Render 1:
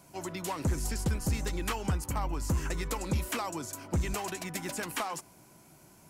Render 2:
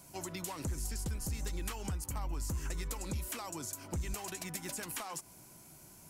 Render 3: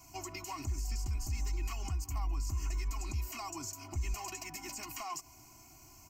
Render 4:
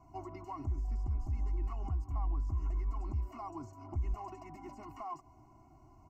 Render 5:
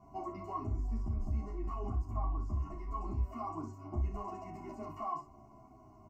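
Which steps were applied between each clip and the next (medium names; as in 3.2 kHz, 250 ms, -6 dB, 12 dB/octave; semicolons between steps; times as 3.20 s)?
treble shelf 4.2 kHz +9 dB; compression, threshold -35 dBFS, peak gain reduction 9.5 dB; bass shelf 99 Hz +7.5 dB; trim -3 dB
comb 2.8 ms, depth 96%; peak limiter -28 dBFS, peak gain reduction 6.5 dB; static phaser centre 2.4 kHz, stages 8; trim +1 dB
Savitzky-Golay filter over 65 samples; trim +1 dB
small resonant body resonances 210/420/620/1100 Hz, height 11 dB, ringing for 45 ms; on a send: early reflections 31 ms -7.5 dB, 60 ms -9 dB; on the sum: endless flanger 11.2 ms -0.76 Hz; trim +1 dB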